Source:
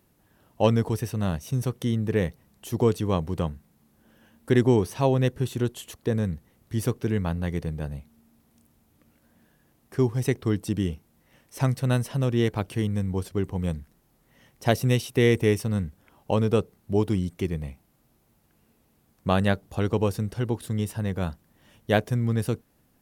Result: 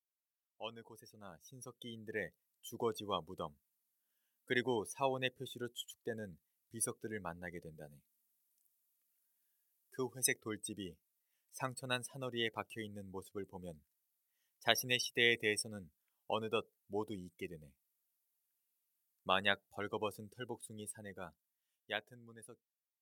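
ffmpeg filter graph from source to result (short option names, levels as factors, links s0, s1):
-filter_complex "[0:a]asettb=1/sr,asplit=3[s0][s1][s2];[s0]atrim=end=7.754[s3];[s1]atrim=start=7.75:end=10.41,asetpts=PTS-STARTPTS,afade=t=in:d=0.004:c=qsin,afade=t=out:st=2.656:d=0.004:c=qsin,highpass=94,highshelf=f=3800:g=4[s4];[s2]atrim=start=10.406[s5];[s3][s4]acrossfade=d=0.004:c1=hsin:c2=qsin[s6];[s6][s5]acrossfade=d=0.004:c1=qsin:c2=hsin,afftdn=nr=25:nf=-33,aderivative,dynaudnorm=f=220:g=17:m=5.01,volume=0.596"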